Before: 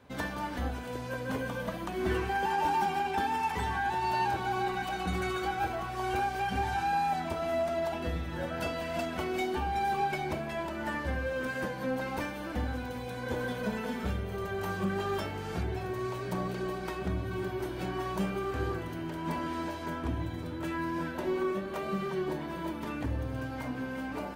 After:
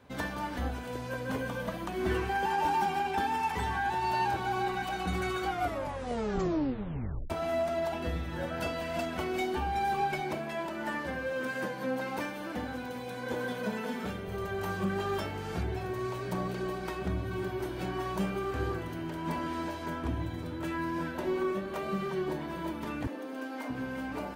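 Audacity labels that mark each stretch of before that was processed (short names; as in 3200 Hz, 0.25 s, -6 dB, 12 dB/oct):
5.460000	5.460000	tape stop 1.84 s
10.200000	14.280000	HPF 150 Hz
23.070000	23.700000	steep high-pass 220 Hz 48 dB/oct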